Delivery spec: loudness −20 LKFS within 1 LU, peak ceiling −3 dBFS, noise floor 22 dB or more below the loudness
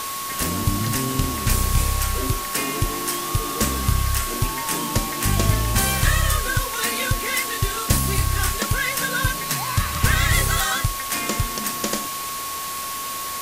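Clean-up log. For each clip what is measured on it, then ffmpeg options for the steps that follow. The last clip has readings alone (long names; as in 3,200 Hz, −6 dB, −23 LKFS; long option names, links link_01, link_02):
interfering tone 1,100 Hz; level of the tone −30 dBFS; background noise floor −29 dBFS; target noise floor −44 dBFS; integrated loudness −22.0 LKFS; sample peak −4.0 dBFS; target loudness −20.0 LKFS
→ -af "bandreject=frequency=1100:width=30"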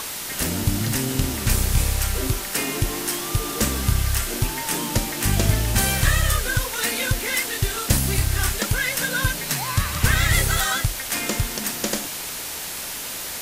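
interfering tone none found; background noise floor −31 dBFS; target noise floor −45 dBFS
→ -af "afftdn=noise_reduction=14:noise_floor=-31"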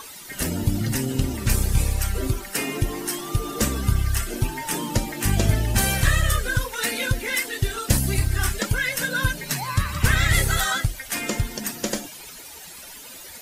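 background noise floor −41 dBFS; target noise floor −46 dBFS
→ -af "afftdn=noise_reduction=6:noise_floor=-41"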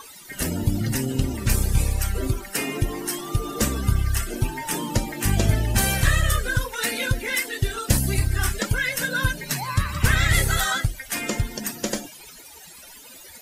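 background noise floor −44 dBFS; target noise floor −46 dBFS
→ -af "afftdn=noise_reduction=6:noise_floor=-44"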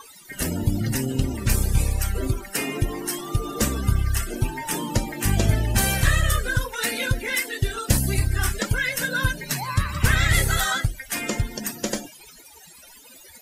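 background noise floor −47 dBFS; integrated loudness −24.0 LKFS; sample peak −4.5 dBFS; target loudness −20.0 LKFS
→ -af "volume=4dB,alimiter=limit=-3dB:level=0:latency=1"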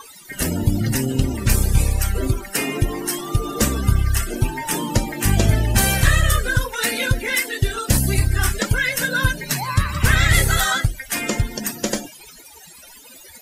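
integrated loudness −20.0 LKFS; sample peak −3.0 dBFS; background noise floor −43 dBFS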